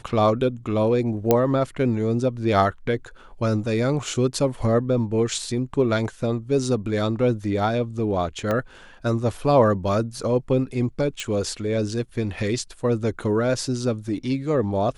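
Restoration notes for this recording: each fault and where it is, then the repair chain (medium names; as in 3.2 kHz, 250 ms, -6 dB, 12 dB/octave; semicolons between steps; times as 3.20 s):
1.31 s: pop -4 dBFS
8.51 s: pop -12 dBFS
11.20 s: pop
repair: de-click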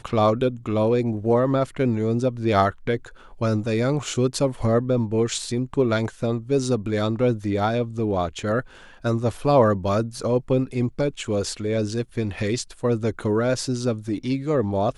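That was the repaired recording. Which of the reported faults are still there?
8.51 s: pop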